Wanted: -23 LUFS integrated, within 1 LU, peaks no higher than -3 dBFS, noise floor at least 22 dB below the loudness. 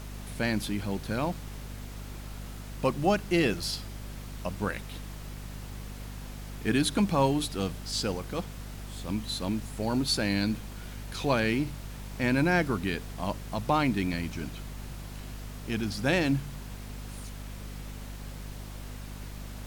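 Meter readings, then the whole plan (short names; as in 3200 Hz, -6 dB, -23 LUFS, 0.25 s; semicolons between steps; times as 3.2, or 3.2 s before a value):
hum 50 Hz; harmonics up to 250 Hz; hum level -38 dBFS; noise floor -41 dBFS; noise floor target -52 dBFS; loudness -30.0 LUFS; peak -12.5 dBFS; loudness target -23.0 LUFS
-> notches 50/100/150/200/250 Hz; noise print and reduce 11 dB; gain +7 dB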